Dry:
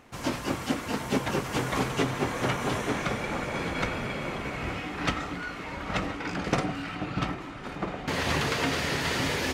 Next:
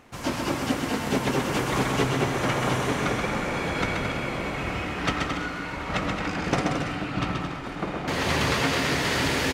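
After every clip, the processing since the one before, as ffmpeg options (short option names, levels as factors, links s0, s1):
-af "aecho=1:1:130|221|284.7|329.3|360.5:0.631|0.398|0.251|0.158|0.1,volume=1.19"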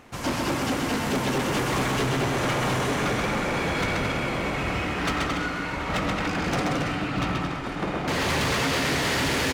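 -af "volume=16.8,asoftclip=hard,volume=0.0596,volume=1.41"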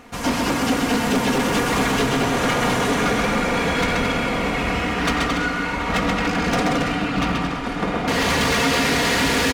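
-af "aecho=1:1:4.2:0.49,volume=1.68"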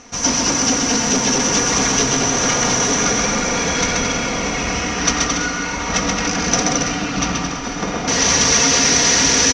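-af "lowpass=f=5900:t=q:w=15"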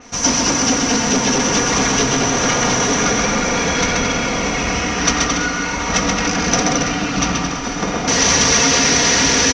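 -af "adynamicequalizer=threshold=0.0447:dfrequency=5100:dqfactor=0.7:tfrequency=5100:tqfactor=0.7:attack=5:release=100:ratio=0.375:range=3:mode=cutabove:tftype=highshelf,volume=1.26"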